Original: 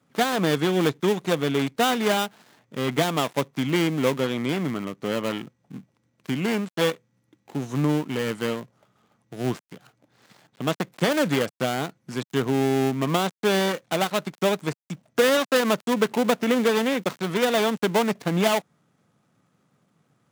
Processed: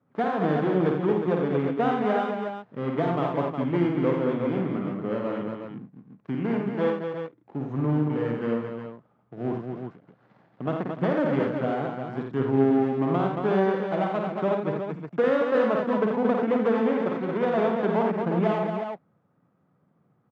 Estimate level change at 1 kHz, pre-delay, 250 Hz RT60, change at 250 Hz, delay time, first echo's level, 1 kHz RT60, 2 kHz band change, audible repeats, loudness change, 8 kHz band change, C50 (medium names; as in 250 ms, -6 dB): -1.0 dB, no reverb, no reverb, 0.0 dB, 52 ms, -4.5 dB, no reverb, -7.0 dB, 5, -1.5 dB, under -30 dB, no reverb